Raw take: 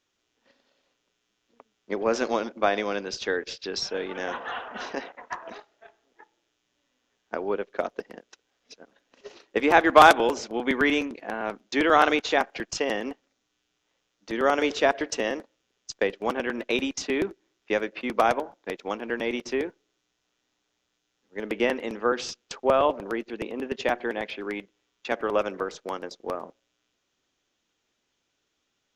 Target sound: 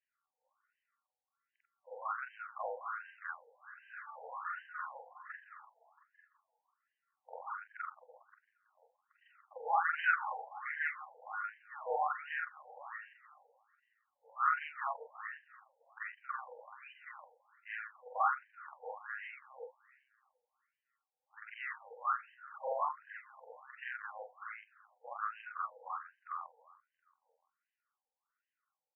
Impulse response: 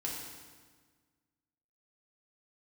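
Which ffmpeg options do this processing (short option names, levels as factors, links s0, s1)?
-filter_complex "[0:a]afftfilt=real='re':imag='-im':win_size=4096:overlap=0.75,superequalizer=8b=0.355:10b=2.51:12b=0.562:15b=3.55:16b=2,asplit=2[s0][s1];[s1]adelay=338,lowpass=f=4700:p=1,volume=0.112,asplit=2[s2][s3];[s3]adelay=338,lowpass=f=4700:p=1,volume=0.48,asplit=2[s4][s5];[s5]adelay=338,lowpass=f=4700:p=1,volume=0.48,asplit=2[s6][s7];[s7]adelay=338,lowpass=f=4700:p=1,volume=0.48[s8];[s2][s4][s6][s8]amix=inputs=4:normalize=0[s9];[s0][s9]amix=inputs=2:normalize=0,afftfilt=real='re*between(b*sr/1024,650*pow(2200/650,0.5+0.5*sin(2*PI*1.3*pts/sr))/1.41,650*pow(2200/650,0.5+0.5*sin(2*PI*1.3*pts/sr))*1.41)':imag='im*between(b*sr/1024,650*pow(2200/650,0.5+0.5*sin(2*PI*1.3*pts/sr))/1.41,650*pow(2200/650,0.5+0.5*sin(2*PI*1.3*pts/sr))*1.41)':win_size=1024:overlap=0.75,volume=0.596"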